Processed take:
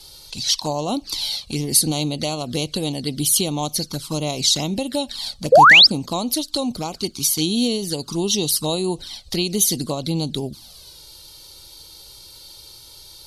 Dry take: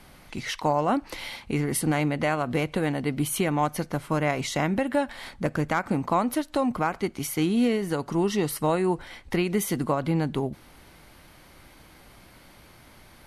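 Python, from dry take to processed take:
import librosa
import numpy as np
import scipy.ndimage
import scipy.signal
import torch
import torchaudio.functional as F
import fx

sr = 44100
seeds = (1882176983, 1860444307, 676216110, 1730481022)

y = fx.env_flanger(x, sr, rest_ms=2.4, full_db=-21.0)
y = fx.high_shelf_res(y, sr, hz=2900.0, db=13.5, q=3.0)
y = fx.spec_paint(y, sr, seeds[0], shape='rise', start_s=5.52, length_s=0.35, low_hz=460.0, high_hz=5500.0, level_db=-10.0)
y = y * librosa.db_to_amplitude(2.0)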